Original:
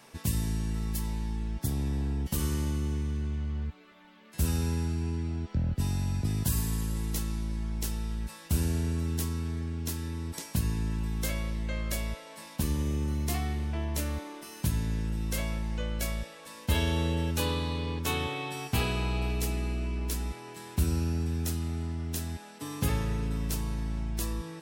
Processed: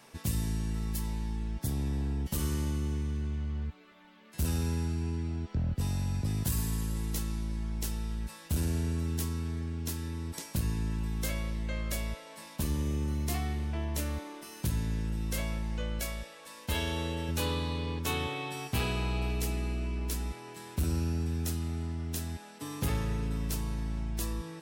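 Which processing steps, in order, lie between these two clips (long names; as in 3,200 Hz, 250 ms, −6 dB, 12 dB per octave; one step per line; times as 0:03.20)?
0:16.00–0:17.29: parametric band 120 Hz −6 dB 2.7 octaves
gain into a clipping stage and back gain 23 dB
level −1.5 dB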